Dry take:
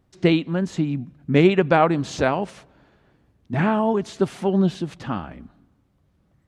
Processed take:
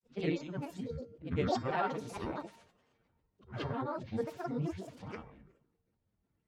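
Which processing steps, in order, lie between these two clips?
short-time spectra conjugated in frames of 185 ms; granulator, spray 38 ms, pitch spread up and down by 12 st; feedback comb 460 Hz, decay 0.43 s, mix 70%; granulator 130 ms, spray 16 ms, pitch spread up and down by 0 st

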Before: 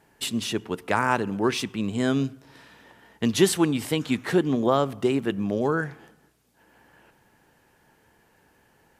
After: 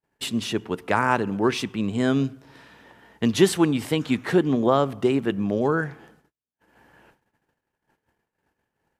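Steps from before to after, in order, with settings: gate -58 dBFS, range -34 dB; treble shelf 4.6 kHz -6 dB; trim +2 dB

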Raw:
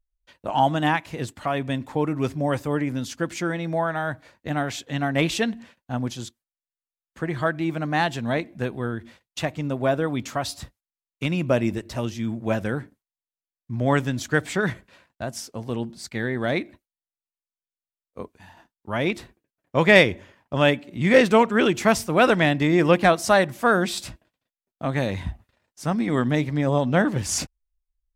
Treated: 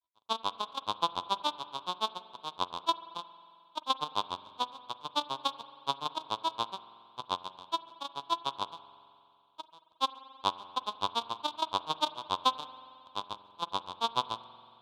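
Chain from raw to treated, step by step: sorted samples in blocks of 256 samples; harmonic-percussive split harmonic +8 dB; in parallel at -0.5 dB: peak limiter -4.5 dBFS, peak gain reduction 11 dB; on the sum: compression 3:1, threshold -9 dBFS, peak gain reduction 8.5 dB; tempo 1.9×; granulator 88 ms, grains 7 per s, spray 34 ms, pitch spread up and down by 12 st; two resonant band-passes 1.9 kHz, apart 1.8 oct; reverberation RT60 2.5 s, pre-delay 44 ms, DRR 14.5 dB

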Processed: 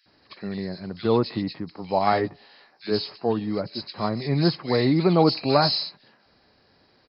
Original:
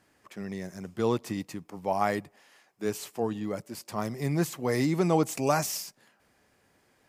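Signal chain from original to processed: knee-point frequency compression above 3.7 kHz 4:1; 2.05–2.85 s: doubling 17 ms -4.5 dB; bands offset in time highs, lows 60 ms, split 2 kHz; trim +6 dB

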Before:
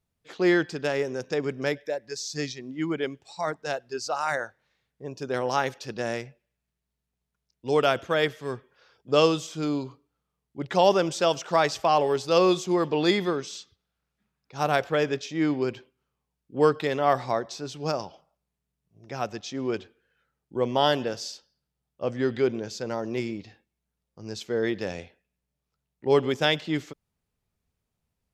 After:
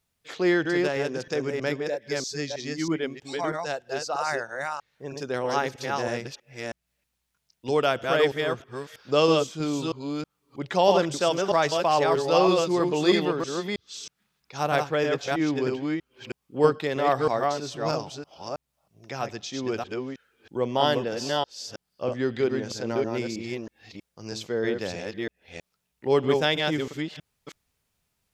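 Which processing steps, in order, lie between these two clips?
chunks repeated in reverse 320 ms, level -3 dB; tape noise reduction on one side only encoder only; trim -1 dB

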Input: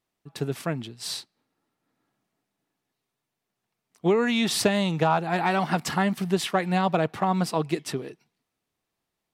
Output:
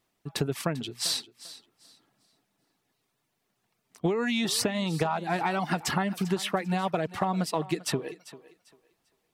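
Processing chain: reverb removal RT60 0.51 s; compression 10:1, threshold -31 dBFS, peak gain reduction 15.5 dB; on a send: thinning echo 395 ms, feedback 25%, high-pass 250 Hz, level -16.5 dB; on the sum: trim +7 dB

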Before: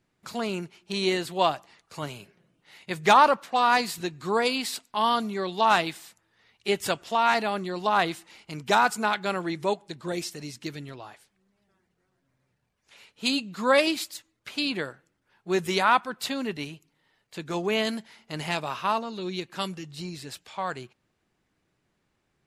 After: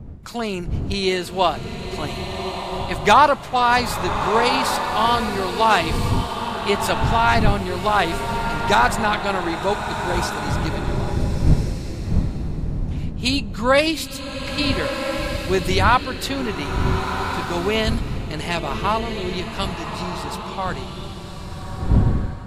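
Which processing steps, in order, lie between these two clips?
wind noise 120 Hz -31 dBFS; swelling reverb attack 1420 ms, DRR 5 dB; trim +4.5 dB

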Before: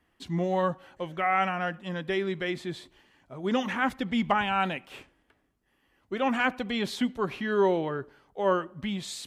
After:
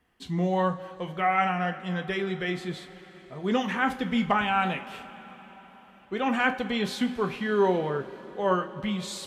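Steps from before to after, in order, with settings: two-slope reverb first 0.25 s, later 4.9 s, from -20 dB, DRR 5 dB

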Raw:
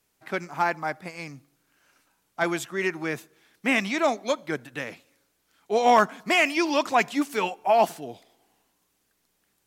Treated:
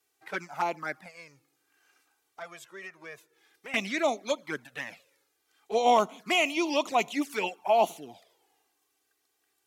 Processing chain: high-pass 360 Hz 6 dB/octave; 1.03–3.74 s: compression 2:1, threshold -46 dBFS, peak gain reduction 14.5 dB; touch-sensitive flanger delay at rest 2.6 ms, full sweep at -22 dBFS

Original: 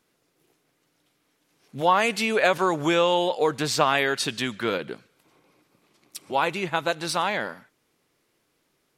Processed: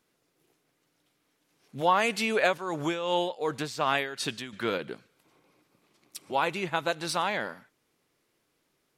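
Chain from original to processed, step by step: 2.44–4.53 s: tremolo 2.7 Hz, depth 71%; trim -3.5 dB

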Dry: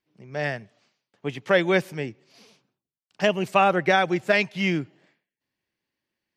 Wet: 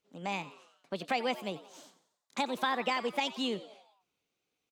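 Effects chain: compression 2:1, threshold -37 dBFS, peak gain reduction 12.5 dB; on a send: frequency-shifting echo 121 ms, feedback 51%, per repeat +81 Hz, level -16 dB; on the sum: speed mistake 33 rpm record played at 45 rpm

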